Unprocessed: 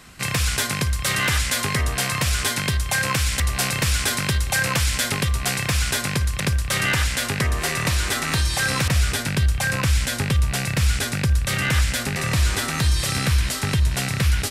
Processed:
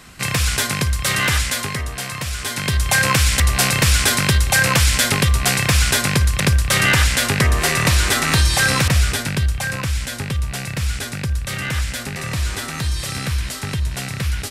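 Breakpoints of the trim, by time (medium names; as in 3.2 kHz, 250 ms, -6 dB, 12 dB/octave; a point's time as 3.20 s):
1.37 s +3 dB
1.88 s -4 dB
2.40 s -4 dB
2.86 s +6 dB
8.62 s +6 dB
9.91 s -2.5 dB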